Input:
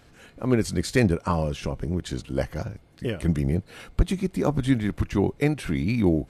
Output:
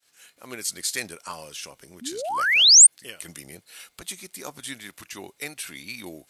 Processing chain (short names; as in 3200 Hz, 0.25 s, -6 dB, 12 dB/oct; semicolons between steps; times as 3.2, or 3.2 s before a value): painted sound rise, 2.01–2.87, 220–9300 Hz -17 dBFS; expander -49 dBFS; differentiator; gain +8 dB